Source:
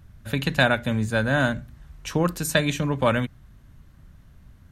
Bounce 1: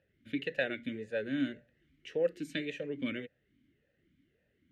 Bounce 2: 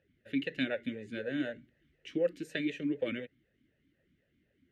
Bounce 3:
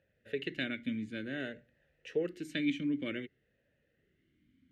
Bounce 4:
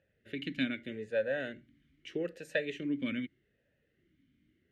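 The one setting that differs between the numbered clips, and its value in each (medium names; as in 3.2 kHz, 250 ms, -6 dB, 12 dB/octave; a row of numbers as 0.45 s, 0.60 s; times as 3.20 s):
talking filter, rate: 1.8 Hz, 4 Hz, 0.54 Hz, 0.81 Hz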